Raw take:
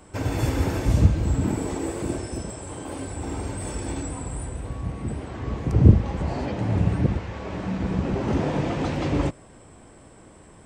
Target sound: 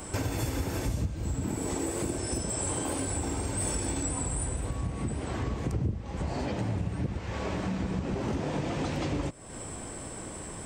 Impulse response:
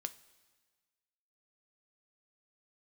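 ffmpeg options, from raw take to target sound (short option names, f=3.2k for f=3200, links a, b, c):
-af "acompressor=threshold=-37dB:ratio=6,highshelf=f=5.2k:g=10,volume=7.5dB"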